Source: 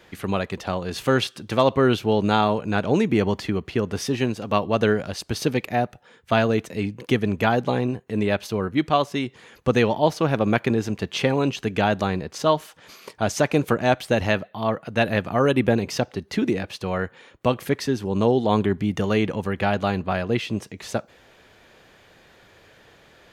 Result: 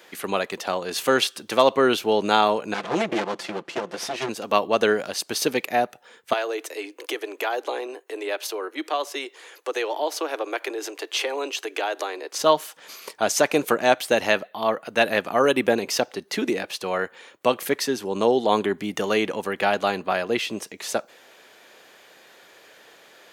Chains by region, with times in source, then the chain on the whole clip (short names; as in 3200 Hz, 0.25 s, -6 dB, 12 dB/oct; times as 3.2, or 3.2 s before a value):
2.74–4.29 minimum comb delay 5.8 ms + air absorption 62 m
6.33–12.33 compressor 2.5:1, threshold -24 dBFS + steep high-pass 300 Hz 72 dB/oct
whole clip: HPF 340 Hz 12 dB/oct; high shelf 6500 Hz +9 dB; gain +2 dB